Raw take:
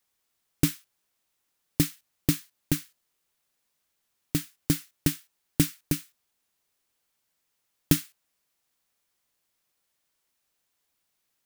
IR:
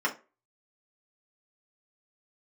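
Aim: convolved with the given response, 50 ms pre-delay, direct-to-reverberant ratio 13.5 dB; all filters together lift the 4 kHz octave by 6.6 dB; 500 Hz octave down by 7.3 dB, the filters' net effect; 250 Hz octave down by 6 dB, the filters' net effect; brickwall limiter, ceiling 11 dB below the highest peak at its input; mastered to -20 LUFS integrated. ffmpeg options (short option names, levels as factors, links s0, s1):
-filter_complex "[0:a]equalizer=f=250:t=o:g=-6.5,equalizer=f=500:t=o:g=-7.5,equalizer=f=4000:t=o:g=8.5,alimiter=limit=0.158:level=0:latency=1,asplit=2[s0][s1];[1:a]atrim=start_sample=2205,adelay=50[s2];[s1][s2]afir=irnorm=-1:irlink=0,volume=0.0631[s3];[s0][s3]amix=inputs=2:normalize=0,volume=5.31"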